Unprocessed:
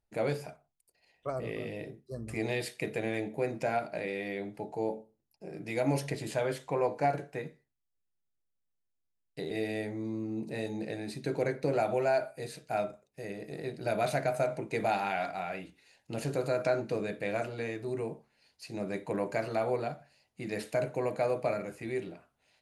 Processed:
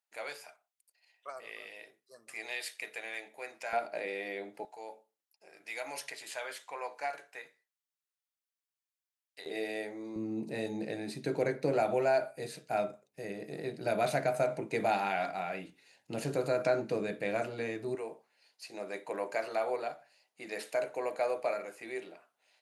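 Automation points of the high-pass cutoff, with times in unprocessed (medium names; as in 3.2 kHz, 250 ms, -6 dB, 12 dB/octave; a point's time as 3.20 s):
1.1 kHz
from 3.73 s 410 Hz
from 4.65 s 1.1 kHz
from 9.46 s 400 Hz
from 10.16 s 140 Hz
from 17.95 s 490 Hz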